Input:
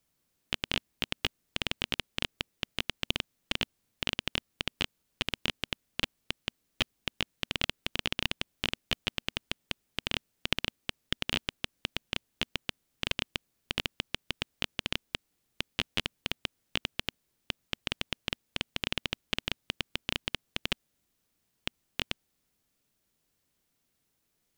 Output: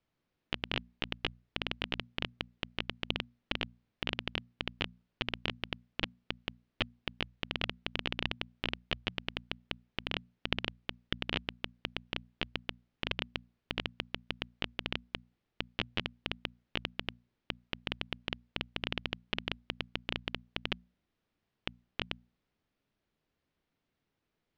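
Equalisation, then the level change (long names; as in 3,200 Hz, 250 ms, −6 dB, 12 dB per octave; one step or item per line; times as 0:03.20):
high-frequency loss of the air 250 metres
mains-hum notches 60/120/180/240 Hz
0.0 dB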